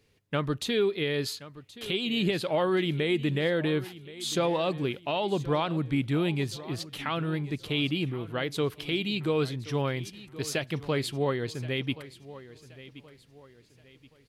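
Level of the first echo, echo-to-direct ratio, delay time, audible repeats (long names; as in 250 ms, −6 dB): −17.0 dB, −16.5 dB, 1,075 ms, 3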